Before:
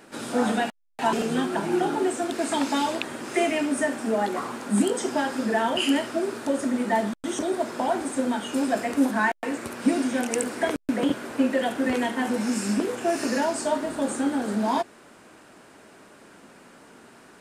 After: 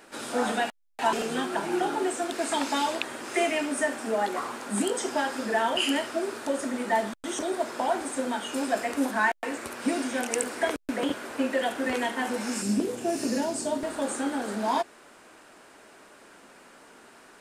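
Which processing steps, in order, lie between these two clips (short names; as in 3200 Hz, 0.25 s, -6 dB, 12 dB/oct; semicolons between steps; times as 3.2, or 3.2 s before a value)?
bell 150 Hz -9.5 dB 2.2 oct, from 12.62 s 1400 Hz, from 13.83 s 140 Hz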